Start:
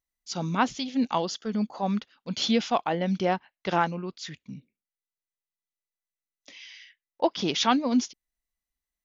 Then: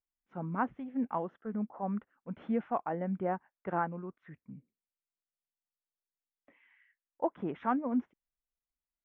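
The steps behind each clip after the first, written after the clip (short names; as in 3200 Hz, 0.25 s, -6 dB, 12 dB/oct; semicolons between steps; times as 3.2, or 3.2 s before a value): inverse Chebyshev low-pass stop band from 4300 Hz, stop band 50 dB; gain -7.5 dB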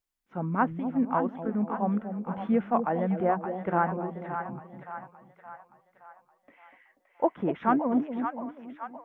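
split-band echo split 670 Hz, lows 0.242 s, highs 0.57 s, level -7 dB; gain +6.5 dB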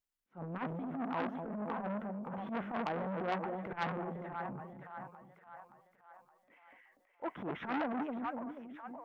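transient shaper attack -12 dB, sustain +6 dB; core saturation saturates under 1800 Hz; gain -5 dB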